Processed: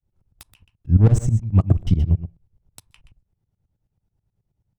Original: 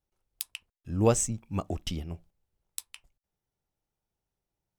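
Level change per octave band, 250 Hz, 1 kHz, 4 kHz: +8.5 dB, -2.5 dB, no reading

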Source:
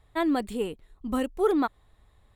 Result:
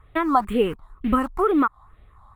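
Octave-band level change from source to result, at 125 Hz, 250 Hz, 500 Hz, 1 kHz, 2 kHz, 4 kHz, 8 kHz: +9.5 dB, +4.5 dB, +4.0 dB, +10.0 dB, +6.0 dB, +2.5 dB, no reading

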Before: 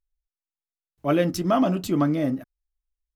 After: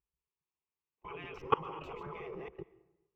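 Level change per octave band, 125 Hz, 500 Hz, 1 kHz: -21.5 dB, -15.0 dB, -8.0 dB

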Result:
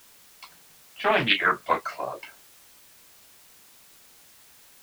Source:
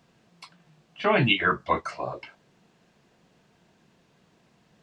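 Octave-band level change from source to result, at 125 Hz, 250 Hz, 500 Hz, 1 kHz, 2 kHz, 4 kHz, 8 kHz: -9.5 dB, -5.0 dB, -1.0 dB, +1.5 dB, +1.5 dB, +1.5 dB, no reading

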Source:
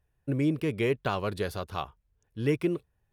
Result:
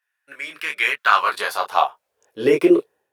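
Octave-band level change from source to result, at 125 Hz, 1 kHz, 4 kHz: under -10 dB, +17.0 dB, +13.5 dB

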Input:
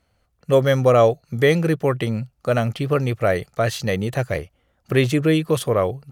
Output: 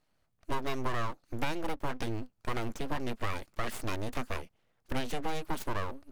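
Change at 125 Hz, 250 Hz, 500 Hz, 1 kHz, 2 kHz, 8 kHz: -19.0 dB, -16.0 dB, -21.5 dB, -10.0 dB, -12.5 dB, -11.5 dB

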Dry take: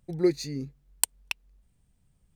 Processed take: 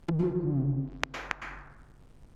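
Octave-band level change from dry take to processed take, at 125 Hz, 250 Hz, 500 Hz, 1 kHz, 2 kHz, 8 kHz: +9.0 dB, -0.5 dB, -5.0 dB, +6.5 dB, +3.0 dB, -21.5 dB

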